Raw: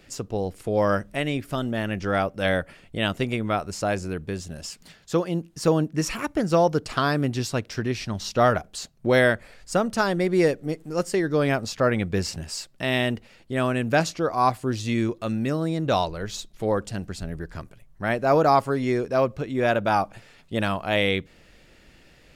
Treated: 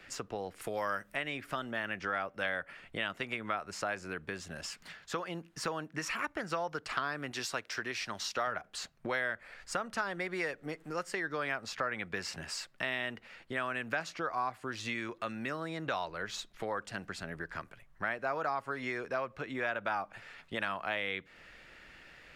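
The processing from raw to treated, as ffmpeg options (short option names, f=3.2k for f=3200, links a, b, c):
-filter_complex "[0:a]asettb=1/sr,asplit=3[a][b][c];[a]atrim=end=0.614[d];[b]atrim=start=0.61:end=1.14,asetpts=PTS-STARTPTS,afade=t=in:d=0.004:c=qsin,afade=t=out:st=0.526:d=0.004:c=qsin,aemphasis=mode=production:type=50fm[e];[c]atrim=start=1.136[f];[d][e]acrossfade=d=0.004:c1=hsin:c2=qsin[g];[g][f]acrossfade=d=0.004:c1=qsin:c2=hsin,asettb=1/sr,asplit=3[h][i][j];[h]atrim=end=7.314[k];[i]atrim=start=7.31:end=8.47,asetpts=PTS-STARTPTS,afade=t=in:d=0.004:c=qsin,afade=t=out:st=1.156:d=0.004:c=qsin,bass=f=250:g=-9,treble=f=4k:g=6[l];[j]atrim=start=8.466[m];[k][l]acrossfade=d=0.004:c1=hsin:c2=qsin[n];[n][m]acrossfade=d=0.004:c1=qsin:c2=hsin,acrossover=split=140|630[o][p][q];[o]acompressor=threshold=-45dB:ratio=4[r];[p]acompressor=threshold=-28dB:ratio=4[s];[q]acompressor=threshold=-25dB:ratio=4[t];[r][s][t]amix=inputs=3:normalize=0,equalizer=f=1.6k:t=o:w=2.3:g=14,acompressor=threshold=-29dB:ratio=2,volume=-8.5dB"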